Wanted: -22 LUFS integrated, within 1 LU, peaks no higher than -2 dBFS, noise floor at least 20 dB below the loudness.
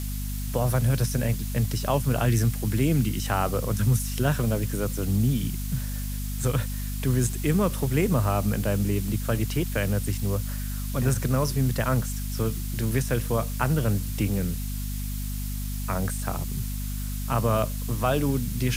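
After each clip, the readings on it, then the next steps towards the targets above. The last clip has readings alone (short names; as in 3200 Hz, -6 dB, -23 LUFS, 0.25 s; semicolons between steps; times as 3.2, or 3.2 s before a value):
hum 50 Hz; harmonics up to 250 Hz; hum level -28 dBFS; noise floor -30 dBFS; noise floor target -47 dBFS; loudness -26.5 LUFS; peak -9.5 dBFS; loudness target -22.0 LUFS
-> notches 50/100/150/200/250 Hz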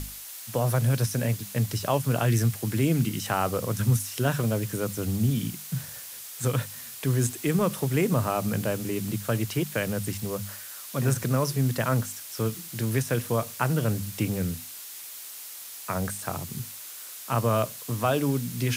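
hum none; noise floor -41 dBFS; noise floor target -48 dBFS
-> noise print and reduce 7 dB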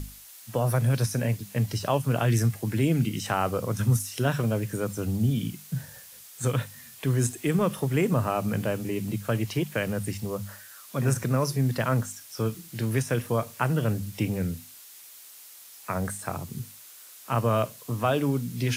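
noise floor -48 dBFS; loudness -27.5 LUFS; peak -10.5 dBFS; loudness target -22.0 LUFS
-> gain +5.5 dB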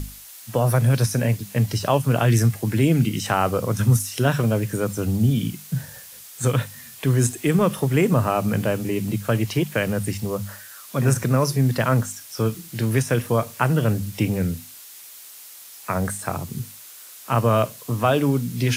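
loudness -22.0 LUFS; peak -5.0 dBFS; noise floor -43 dBFS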